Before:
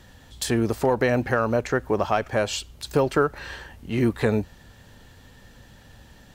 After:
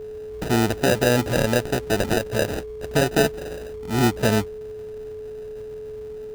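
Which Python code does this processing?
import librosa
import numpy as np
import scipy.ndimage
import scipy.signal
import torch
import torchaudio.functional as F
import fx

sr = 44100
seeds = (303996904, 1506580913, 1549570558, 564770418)

y = fx.hpss(x, sr, part='harmonic', gain_db=3)
y = fx.sample_hold(y, sr, seeds[0], rate_hz=1100.0, jitter_pct=0)
y = y + 10.0 ** (-32.0 / 20.0) * np.sin(2.0 * np.pi * 430.0 * np.arange(len(y)) / sr)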